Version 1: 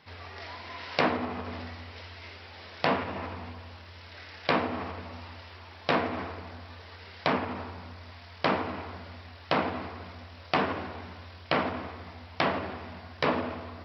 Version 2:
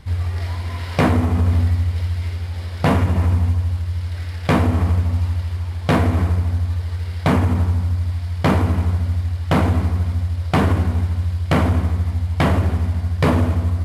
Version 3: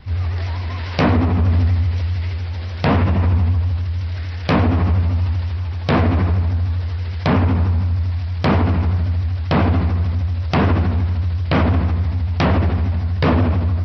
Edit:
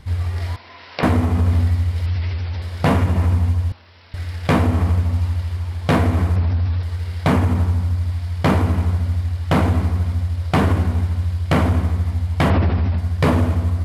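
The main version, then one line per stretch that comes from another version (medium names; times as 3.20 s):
2
0.56–1.03 s: from 1
2.06–2.62 s: from 3
3.72–4.14 s: from 1
6.36–6.83 s: from 3
12.50–12.98 s: from 3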